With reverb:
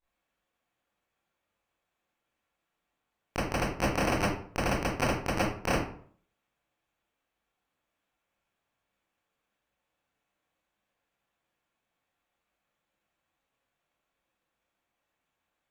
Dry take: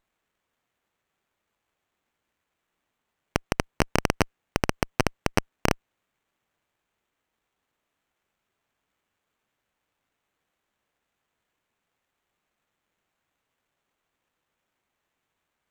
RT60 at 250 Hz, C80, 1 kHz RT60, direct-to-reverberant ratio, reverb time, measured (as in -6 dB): 0.60 s, 7.5 dB, 0.50 s, -12.5 dB, 0.55 s